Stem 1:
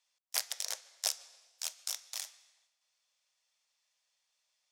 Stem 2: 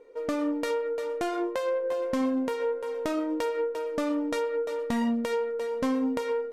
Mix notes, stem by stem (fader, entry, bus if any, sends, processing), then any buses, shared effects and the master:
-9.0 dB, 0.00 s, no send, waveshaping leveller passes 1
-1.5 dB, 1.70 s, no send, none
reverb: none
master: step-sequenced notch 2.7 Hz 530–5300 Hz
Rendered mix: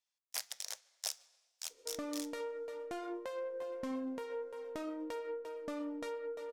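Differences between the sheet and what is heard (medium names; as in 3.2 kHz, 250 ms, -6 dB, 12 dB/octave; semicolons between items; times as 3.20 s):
stem 2 -1.5 dB -> -12.5 dB; master: missing step-sequenced notch 2.7 Hz 530–5300 Hz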